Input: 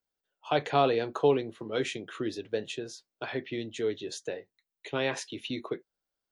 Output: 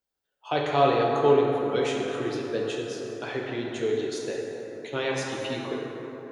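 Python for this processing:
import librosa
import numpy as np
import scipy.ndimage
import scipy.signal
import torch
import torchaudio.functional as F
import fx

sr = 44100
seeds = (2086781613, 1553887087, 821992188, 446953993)

y = fx.rev_plate(x, sr, seeds[0], rt60_s=4.0, hf_ratio=0.4, predelay_ms=0, drr_db=-2.0)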